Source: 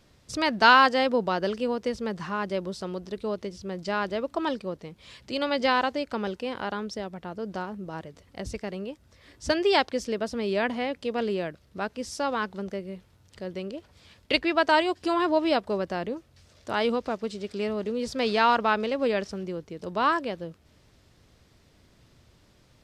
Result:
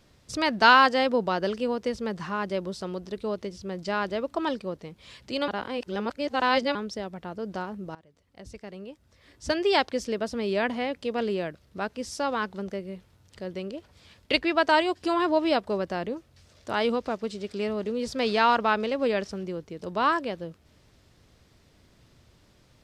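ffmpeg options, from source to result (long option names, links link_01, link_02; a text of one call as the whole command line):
ffmpeg -i in.wav -filter_complex "[0:a]asplit=4[link_01][link_02][link_03][link_04];[link_01]atrim=end=5.482[link_05];[link_02]atrim=start=5.478:end=6.752,asetpts=PTS-STARTPTS,areverse[link_06];[link_03]atrim=start=6.748:end=7.95,asetpts=PTS-STARTPTS,afade=type=out:start_time=1.198:duration=0.004:curve=hsin:silence=0.1[link_07];[link_04]atrim=start=7.95,asetpts=PTS-STARTPTS,afade=type=in:duration=1.96:silence=0.1[link_08];[link_05][link_06]acrossfade=duration=0.004:curve1=hsin:curve2=hsin[link_09];[link_07][link_08]concat=n=2:v=0:a=1[link_10];[link_09][link_10]acrossfade=duration=0.004:curve1=hsin:curve2=hsin" out.wav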